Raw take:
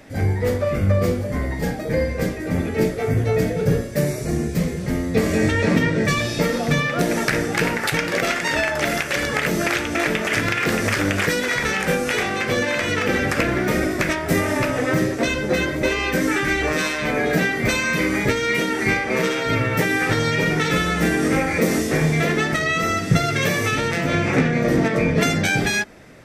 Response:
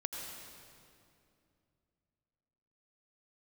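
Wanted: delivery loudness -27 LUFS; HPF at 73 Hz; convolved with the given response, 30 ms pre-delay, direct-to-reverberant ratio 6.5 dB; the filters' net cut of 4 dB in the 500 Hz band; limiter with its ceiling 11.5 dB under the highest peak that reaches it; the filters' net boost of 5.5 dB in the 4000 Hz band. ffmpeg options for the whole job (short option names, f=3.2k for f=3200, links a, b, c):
-filter_complex "[0:a]highpass=73,equalizer=f=500:t=o:g=-5,equalizer=f=4k:t=o:g=7,alimiter=limit=-14.5dB:level=0:latency=1,asplit=2[a][b];[1:a]atrim=start_sample=2205,adelay=30[c];[b][c]afir=irnorm=-1:irlink=0,volume=-7.5dB[d];[a][d]amix=inputs=2:normalize=0,volume=-4.5dB"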